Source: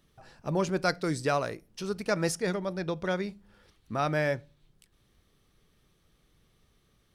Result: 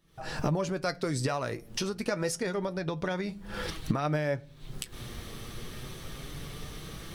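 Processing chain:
camcorder AGC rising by 70 dB per second
flanger 0.28 Hz, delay 5.9 ms, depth 2.9 ms, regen +55%

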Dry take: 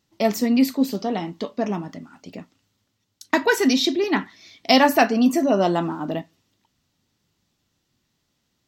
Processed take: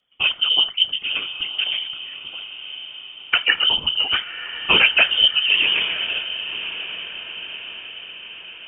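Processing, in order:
voice inversion scrambler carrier 3,300 Hz
random phases in short frames
feedback delay with all-pass diffusion 1,050 ms, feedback 54%, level −11.5 dB

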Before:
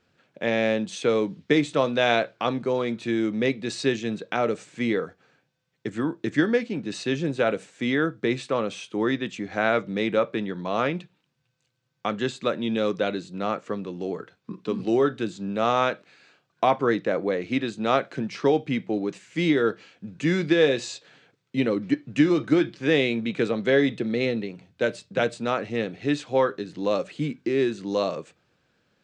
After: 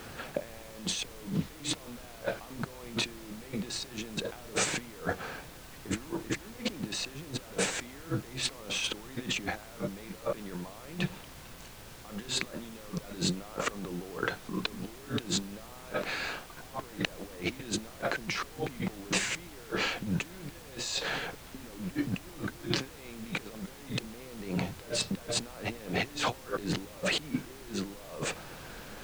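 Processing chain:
parametric band 870 Hz +6 dB 1.3 octaves
compressor whose output falls as the input rises −45 dBFS, ratio −1
background noise pink −52 dBFS
level +3 dB

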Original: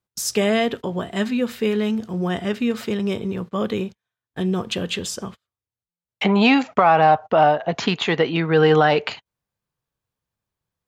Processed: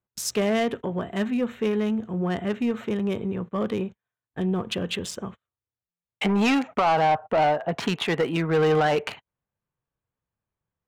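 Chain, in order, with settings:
adaptive Wiener filter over 9 samples
soft clipping −13.5 dBFS, distortion −13 dB
level −2 dB

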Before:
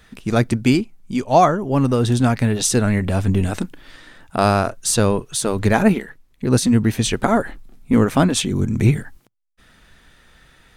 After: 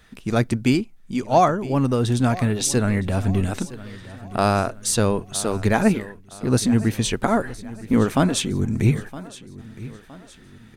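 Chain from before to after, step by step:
repeating echo 965 ms, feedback 43%, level −17.5 dB
level −3 dB

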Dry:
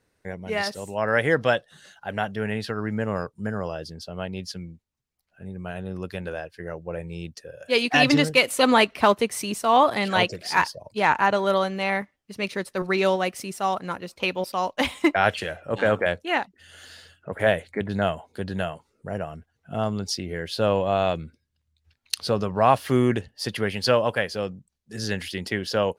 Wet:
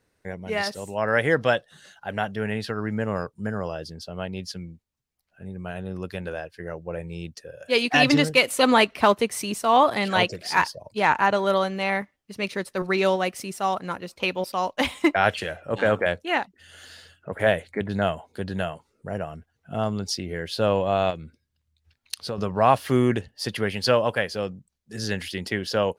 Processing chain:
0:21.10–0:22.38: downward compressor 3 to 1, threshold −30 dBFS, peak gain reduction 9.5 dB

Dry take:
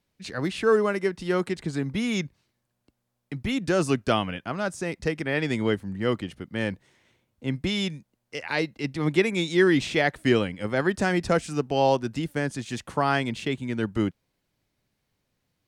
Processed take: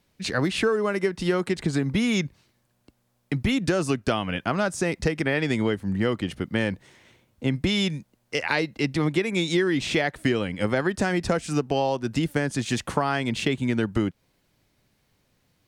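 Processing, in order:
downward compressor 10 to 1, threshold −28 dBFS, peak gain reduction 14 dB
level +8.5 dB

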